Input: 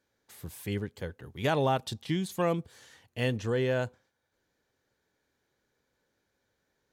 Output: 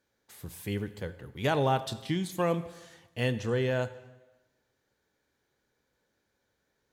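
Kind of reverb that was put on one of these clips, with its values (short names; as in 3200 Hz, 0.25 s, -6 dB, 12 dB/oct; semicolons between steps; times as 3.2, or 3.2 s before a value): plate-style reverb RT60 1.1 s, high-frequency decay 0.9×, DRR 12 dB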